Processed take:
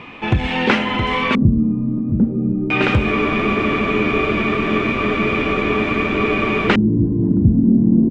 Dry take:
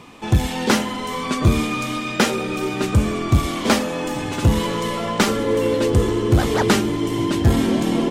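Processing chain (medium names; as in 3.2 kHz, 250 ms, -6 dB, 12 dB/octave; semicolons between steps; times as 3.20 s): compression 5:1, threshold -17 dBFS, peak gain reduction 7.5 dB; on a send: delay 669 ms -7 dB; on the sum: LFO low-pass square 0.37 Hz 210–2500 Hz; spectral freeze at 3.14 s, 3.53 s; trim +4.5 dB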